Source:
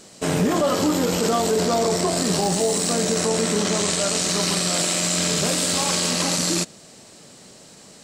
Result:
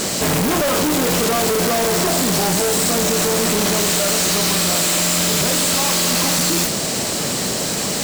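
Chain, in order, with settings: modulation noise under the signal 11 dB; fuzz box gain 48 dB, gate -52 dBFS; trim -3.5 dB

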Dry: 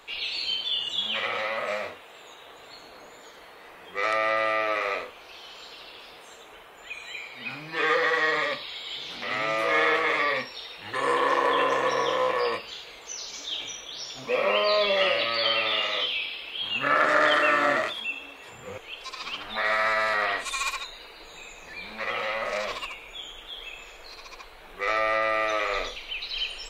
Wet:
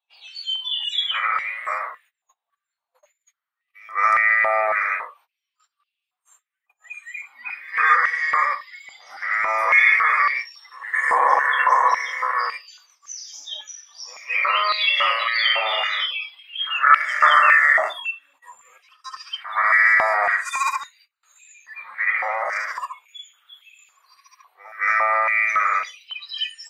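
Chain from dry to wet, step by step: spectral noise reduction 22 dB; pre-echo 219 ms -22 dB; gate -57 dBFS, range -25 dB; step-sequenced high-pass 3.6 Hz 790–2600 Hz; trim +2 dB

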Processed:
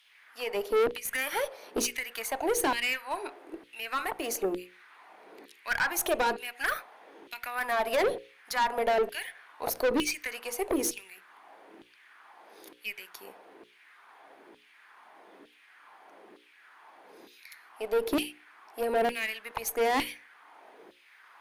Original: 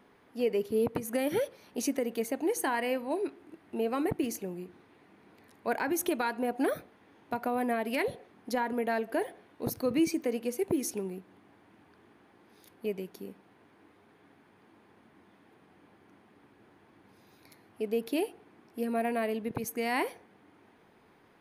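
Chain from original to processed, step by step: LFO high-pass saw down 1.1 Hz 320–3400 Hz; valve stage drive 29 dB, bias 0.35; hum notches 60/120/180/240/300/360/420/480/540 Hz; trim +7.5 dB

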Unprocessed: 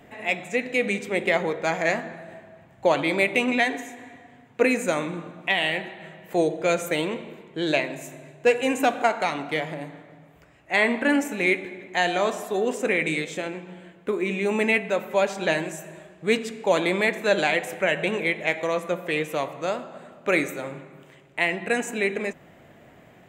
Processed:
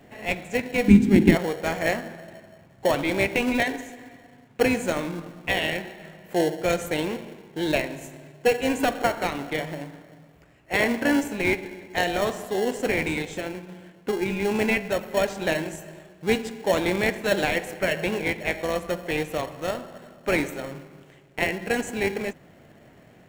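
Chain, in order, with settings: in parallel at -5 dB: sample-and-hold 36×; 0.88–1.35 s: on the sum: resonant low shelf 380 Hz +12.5 dB, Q 3; trim -3 dB

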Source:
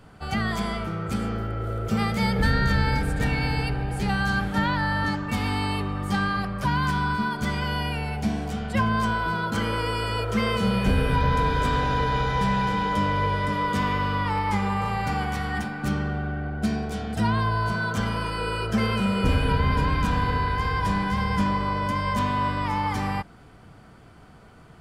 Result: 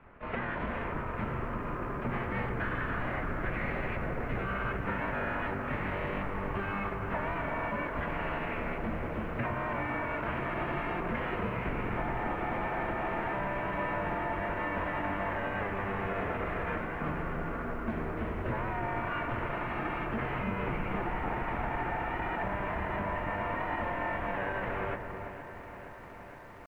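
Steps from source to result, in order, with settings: full-wave rectifier; tempo 0.93×; mistuned SSB -200 Hz 150–2600 Hz; compression 12:1, threshold -30 dBFS, peak gain reduction 8.5 dB; band-stop 780 Hz, Q 15; on a send: filtered feedback delay 330 ms, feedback 35%, low-pass 1 kHz, level -5.5 dB; on the sum: bit-crushed delay 466 ms, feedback 80%, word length 10-bit, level -14 dB

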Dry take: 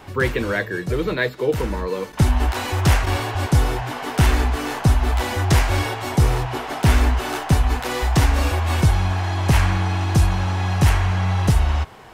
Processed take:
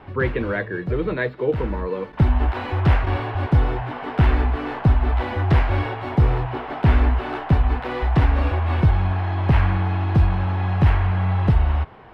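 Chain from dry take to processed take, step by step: distance through air 420 m

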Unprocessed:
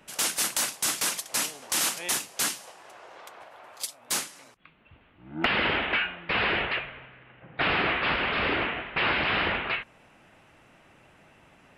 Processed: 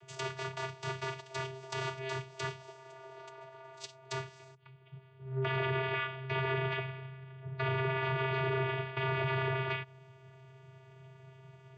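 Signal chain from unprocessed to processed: treble shelf 3.4 kHz +6.5 dB; low-pass that closes with the level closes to 2.5 kHz, closed at -22 dBFS; vocoder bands 16, square 132 Hz; peak limiter -23.5 dBFS, peak gain reduction 7.5 dB; trim -2 dB

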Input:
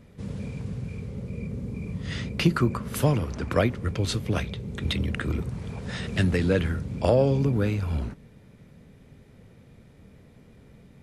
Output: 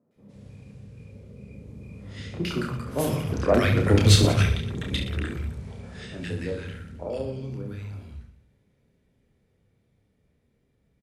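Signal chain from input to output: Doppler pass-by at 3.95 s, 8 m/s, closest 1.9 m; three bands offset in time mids, highs, lows 110/160 ms, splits 160/1200 Hz; Chebyshev shaper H 5 -22 dB, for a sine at -13.5 dBFS; on a send: reverse bouncing-ball echo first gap 30 ms, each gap 1.3×, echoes 5; on the sum: trim +7.5 dB

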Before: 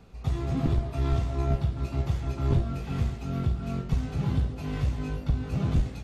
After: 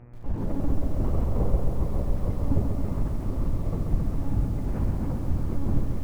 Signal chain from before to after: low-pass 1.2 kHz 12 dB/octave; monotone LPC vocoder at 8 kHz 280 Hz; mains buzz 120 Hz, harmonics 25, -50 dBFS -8 dB/octave; formant shift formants -3 st; bit-crushed delay 135 ms, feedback 80%, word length 9-bit, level -5.5 dB; trim +1 dB

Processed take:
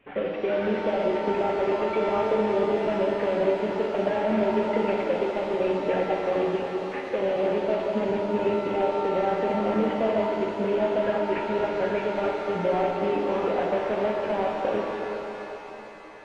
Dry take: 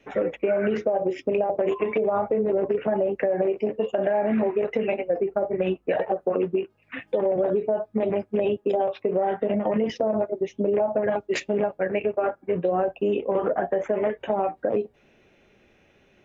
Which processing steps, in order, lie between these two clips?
CVSD coder 16 kbps; pitch-shifted reverb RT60 3.7 s, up +7 st, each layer -8 dB, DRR -0.5 dB; trim -3.5 dB

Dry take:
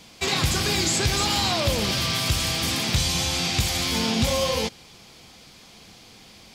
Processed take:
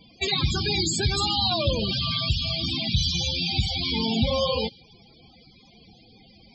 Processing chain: dynamic bell 3.8 kHz, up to +4 dB, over -39 dBFS, Q 0.93; loudest bins only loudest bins 32

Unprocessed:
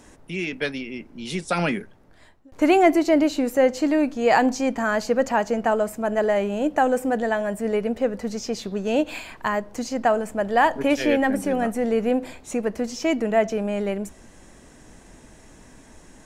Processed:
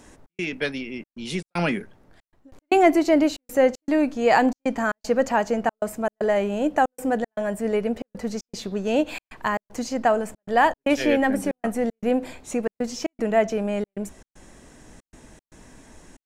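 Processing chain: trance gate "xx.xxxxx." 116 bpm -60 dB

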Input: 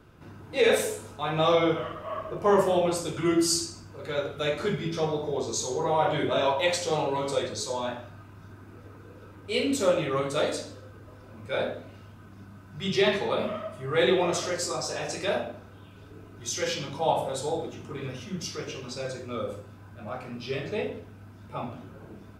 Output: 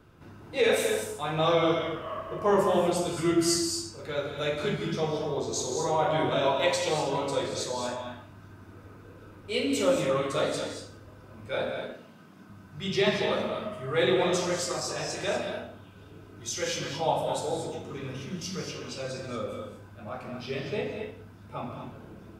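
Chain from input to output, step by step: 11.70–12.50 s: Chebyshev high-pass 160 Hz, order 3; gated-style reverb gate 260 ms rising, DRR 4.5 dB; trim -2 dB

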